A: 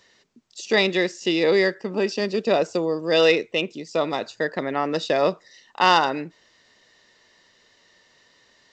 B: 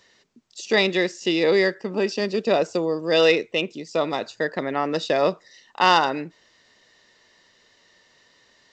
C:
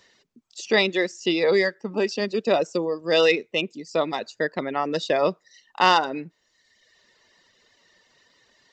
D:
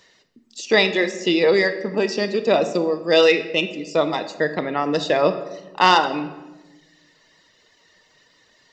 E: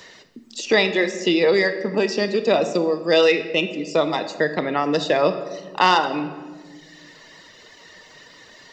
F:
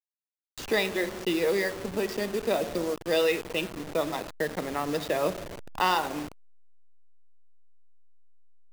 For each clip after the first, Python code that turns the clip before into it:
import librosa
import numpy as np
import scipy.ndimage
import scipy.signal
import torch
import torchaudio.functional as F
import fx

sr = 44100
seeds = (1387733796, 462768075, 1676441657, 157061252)

y1 = x
y2 = fx.dereverb_blind(y1, sr, rt60_s=1.0)
y3 = fx.room_shoebox(y2, sr, seeds[0], volume_m3=650.0, walls='mixed', distance_m=0.55)
y3 = F.gain(torch.from_numpy(y3), 3.0).numpy()
y4 = fx.band_squash(y3, sr, depth_pct=40)
y5 = fx.delta_hold(y4, sr, step_db=-24.0)
y5 = F.gain(torch.from_numpy(y5), -8.5).numpy()